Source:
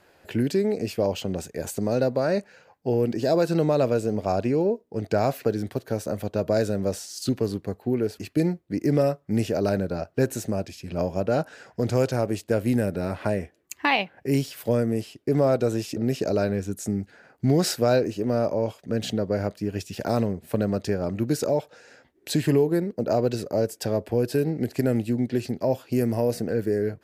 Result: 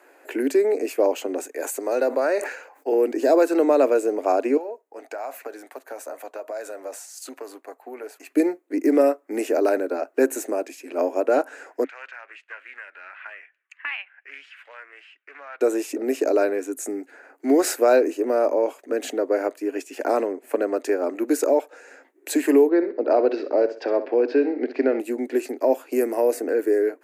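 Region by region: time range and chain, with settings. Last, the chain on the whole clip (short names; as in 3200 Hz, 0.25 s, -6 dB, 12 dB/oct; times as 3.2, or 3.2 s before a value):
1.51–2.92 HPF 490 Hz 6 dB/oct + sustainer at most 84 dB/s
4.57–8.3 resonant low shelf 510 Hz -9.5 dB, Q 1.5 + compressor, threshold -28 dBFS + flange 1.5 Hz, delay 0 ms, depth 4.2 ms, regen -79%
11.84–15.61 Chebyshev band-pass 1500–3000 Hz + compressor 1.5:1, threshold -44 dBFS + Doppler distortion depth 0.14 ms
19.7–20.77 high shelf 9600 Hz -8 dB + notch 3800 Hz, Q 15
22.69–25 steep low-pass 5000 Hz 48 dB/oct + feedback echo 64 ms, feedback 34%, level -12.5 dB
whole clip: Chebyshev high-pass 270 Hz, order 6; band shelf 4100 Hz -9.5 dB 1.1 oct; gain +5.5 dB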